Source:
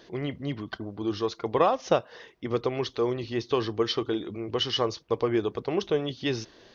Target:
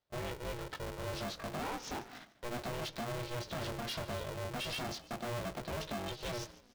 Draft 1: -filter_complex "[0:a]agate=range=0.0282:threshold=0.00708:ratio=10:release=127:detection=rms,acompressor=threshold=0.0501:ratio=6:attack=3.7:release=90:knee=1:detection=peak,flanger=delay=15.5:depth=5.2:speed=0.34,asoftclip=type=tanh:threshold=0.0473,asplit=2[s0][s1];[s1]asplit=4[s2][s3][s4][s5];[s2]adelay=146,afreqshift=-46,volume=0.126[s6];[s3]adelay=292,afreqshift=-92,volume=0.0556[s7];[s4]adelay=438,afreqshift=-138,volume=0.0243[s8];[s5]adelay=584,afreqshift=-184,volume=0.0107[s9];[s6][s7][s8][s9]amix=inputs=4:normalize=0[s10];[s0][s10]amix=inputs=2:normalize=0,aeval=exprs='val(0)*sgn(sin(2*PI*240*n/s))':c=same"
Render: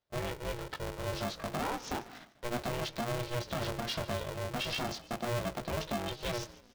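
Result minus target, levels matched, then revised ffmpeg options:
saturation: distortion -10 dB
-filter_complex "[0:a]agate=range=0.0282:threshold=0.00708:ratio=10:release=127:detection=rms,acompressor=threshold=0.0501:ratio=6:attack=3.7:release=90:knee=1:detection=peak,flanger=delay=15.5:depth=5.2:speed=0.34,asoftclip=type=tanh:threshold=0.0168,asplit=2[s0][s1];[s1]asplit=4[s2][s3][s4][s5];[s2]adelay=146,afreqshift=-46,volume=0.126[s6];[s3]adelay=292,afreqshift=-92,volume=0.0556[s7];[s4]adelay=438,afreqshift=-138,volume=0.0243[s8];[s5]adelay=584,afreqshift=-184,volume=0.0107[s9];[s6][s7][s8][s9]amix=inputs=4:normalize=0[s10];[s0][s10]amix=inputs=2:normalize=0,aeval=exprs='val(0)*sgn(sin(2*PI*240*n/s))':c=same"

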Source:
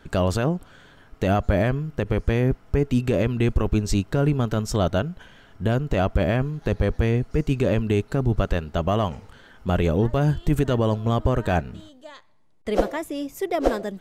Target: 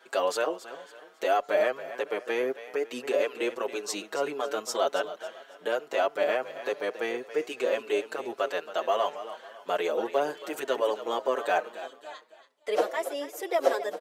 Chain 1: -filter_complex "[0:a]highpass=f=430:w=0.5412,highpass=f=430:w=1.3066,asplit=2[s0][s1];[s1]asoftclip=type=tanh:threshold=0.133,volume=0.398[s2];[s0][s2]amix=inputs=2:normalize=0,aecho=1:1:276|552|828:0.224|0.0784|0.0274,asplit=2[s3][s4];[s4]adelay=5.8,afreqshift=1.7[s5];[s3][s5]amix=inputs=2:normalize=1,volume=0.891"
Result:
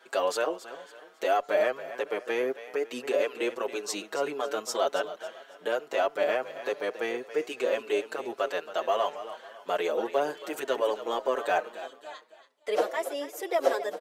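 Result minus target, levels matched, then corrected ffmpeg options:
saturation: distortion +12 dB
-filter_complex "[0:a]highpass=f=430:w=0.5412,highpass=f=430:w=1.3066,asplit=2[s0][s1];[s1]asoftclip=type=tanh:threshold=0.355,volume=0.398[s2];[s0][s2]amix=inputs=2:normalize=0,aecho=1:1:276|552|828:0.224|0.0784|0.0274,asplit=2[s3][s4];[s4]adelay=5.8,afreqshift=1.7[s5];[s3][s5]amix=inputs=2:normalize=1,volume=0.891"

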